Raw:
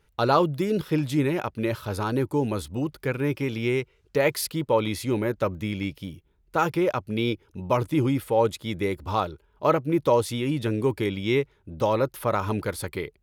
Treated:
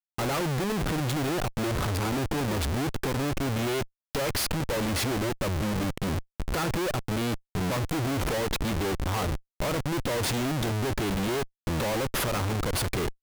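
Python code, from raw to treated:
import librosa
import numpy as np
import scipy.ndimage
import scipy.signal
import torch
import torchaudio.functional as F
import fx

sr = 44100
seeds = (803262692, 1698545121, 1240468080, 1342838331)

y = fx.recorder_agc(x, sr, target_db=-16.0, rise_db_per_s=62.0, max_gain_db=30)
y = fx.tube_stage(y, sr, drive_db=20.0, bias=0.3)
y = fx.schmitt(y, sr, flips_db=-32.5)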